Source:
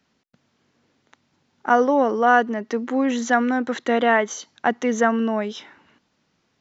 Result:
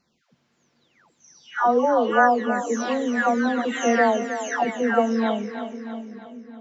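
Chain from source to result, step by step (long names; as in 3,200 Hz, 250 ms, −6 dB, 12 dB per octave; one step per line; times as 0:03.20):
every frequency bin delayed by itself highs early, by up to 629 ms
echo with a time of its own for lows and highs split 340 Hz, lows 751 ms, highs 319 ms, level −10 dB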